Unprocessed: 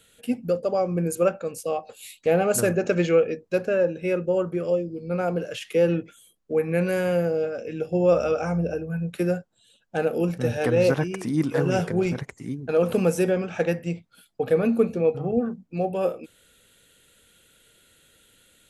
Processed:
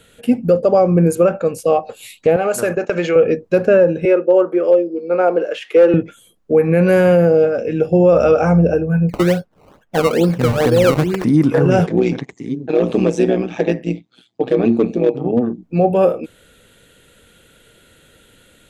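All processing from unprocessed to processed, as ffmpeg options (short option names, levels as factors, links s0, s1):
-filter_complex "[0:a]asettb=1/sr,asplit=3[s0][s1][s2];[s0]atrim=end=2.364[s3];[s1]atrim=start=2.36:end=3.16,asetpts=PTS-STARTPTS,afade=t=in:d=0.004:c=qsin,afade=t=out:st=0.796:d=0.004:c=qsin,highpass=f=660:p=1,agate=range=0.2:threshold=0.0158:ratio=16:release=100:detection=peak,acompressor=threshold=0.0562:ratio=4:attack=3.2:release=140:knee=1:detection=peak[s4];[s2]atrim=start=3.156[s5];[s3][s4]acrossfade=d=0.004:c1=hsin:c2=qsin[s6];[s6][s5]acrossfade=d=0.004:c1=qsin:c2=hsin,asettb=1/sr,asplit=3[s7][s8][s9];[s7]atrim=end=4.054[s10];[s8]atrim=start=4.05:end=5.94,asetpts=PTS-STARTPTS,afade=t=in:d=0.004:c=qsin,afade=t=out:st=1.886:d=0.004:c=qsin,highpass=f=310:w=0.5412,highpass=f=310:w=1.3066,aemphasis=mode=reproduction:type=50kf,volume=5.96,asoftclip=hard,volume=0.168[s11];[s9]atrim=start=5.936[s12];[s10][s11]acrossfade=d=0.004:c1=hsin:c2=qsin[s13];[s13][s12]acrossfade=d=0.004:c1=qsin:c2=hsin,asettb=1/sr,asplit=3[s14][s15][s16];[s14]atrim=end=9.094[s17];[s15]atrim=start=9.09:end=11.24,asetpts=PTS-STARTPTS,afade=t=in:d=0.004:c=qsin,afade=t=out:st=2.146:d=0.004:c=qsin,acompressor=threshold=0.0447:ratio=1.5:attack=3.2:release=140:knee=1:detection=peak,acrusher=samples=18:mix=1:aa=0.000001:lfo=1:lforange=18:lforate=2.3[s18];[s16]atrim=start=11.236[s19];[s17][s18]acrossfade=d=0.004:c1=hsin:c2=qsin[s20];[s20][s19]acrossfade=d=0.004:c1=qsin:c2=hsin,asettb=1/sr,asplit=3[s21][s22][s23];[s21]atrim=end=11.864[s24];[s22]atrim=start=11.86:end=15.63,asetpts=PTS-STARTPTS,afade=t=in:d=0.004:c=qsin,afade=t=out:st=3.766:d=0.004:c=qsin,asoftclip=type=hard:threshold=0.188,tremolo=f=120:d=0.824,highpass=170,equalizer=f=310:t=q:w=4:g=4,equalizer=f=570:t=q:w=4:g=-7,equalizer=f=970:t=q:w=4:g=-3,equalizer=f=1400:t=q:w=4:g=-10,equalizer=f=3600:t=q:w=4:g=7,equalizer=f=6400:t=q:w=4:g=3,lowpass=f=7700:w=0.5412,lowpass=f=7700:w=1.3066[s25];[s23]atrim=start=15.626[s26];[s24][s25]acrossfade=d=0.004:c1=hsin:c2=qsin[s27];[s27][s26]acrossfade=d=0.004:c1=qsin:c2=hsin,highshelf=f=2500:g=-10,alimiter=level_in=6.31:limit=0.891:release=50:level=0:latency=1,volume=0.708"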